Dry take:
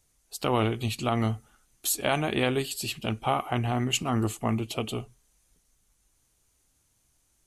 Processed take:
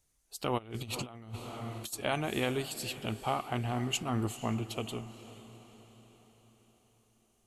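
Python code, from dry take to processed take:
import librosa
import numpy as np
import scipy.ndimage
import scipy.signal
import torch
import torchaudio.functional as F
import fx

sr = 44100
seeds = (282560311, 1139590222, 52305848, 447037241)

p1 = x + fx.echo_diffused(x, sr, ms=483, feedback_pct=51, wet_db=-15.0, dry=0)
p2 = fx.over_compress(p1, sr, threshold_db=-33.0, ratio=-0.5, at=(0.57, 1.92), fade=0.02)
y = F.gain(torch.from_numpy(p2), -6.0).numpy()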